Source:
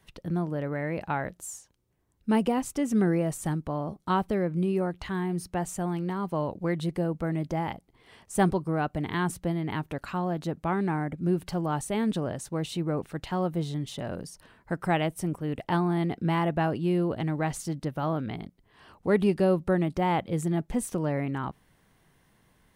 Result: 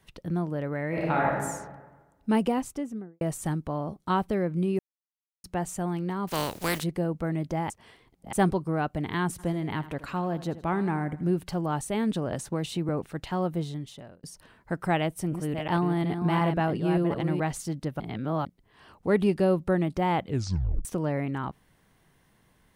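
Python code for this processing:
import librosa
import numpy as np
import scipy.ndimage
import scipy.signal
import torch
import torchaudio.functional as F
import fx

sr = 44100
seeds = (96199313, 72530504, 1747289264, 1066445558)

y = fx.reverb_throw(x, sr, start_s=0.88, length_s=0.53, rt60_s=1.3, drr_db=-4.5)
y = fx.studio_fade_out(y, sr, start_s=2.49, length_s=0.72)
y = fx.spec_flatten(y, sr, power=0.4, at=(6.27, 6.82), fade=0.02)
y = fx.echo_feedback(y, sr, ms=80, feedback_pct=45, wet_db=-15.0, at=(9.38, 11.29), fade=0.02)
y = fx.band_squash(y, sr, depth_pct=70, at=(12.32, 12.89))
y = fx.reverse_delay(y, sr, ms=365, wet_db=-6.0, at=(14.95, 17.4))
y = fx.edit(y, sr, fx.silence(start_s=4.79, length_s=0.65),
    fx.reverse_span(start_s=7.7, length_s=0.63),
    fx.fade_out_span(start_s=13.55, length_s=0.68),
    fx.reverse_span(start_s=18.0, length_s=0.45),
    fx.tape_stop(start_s=20.24, length_s=0.61), tone=tone)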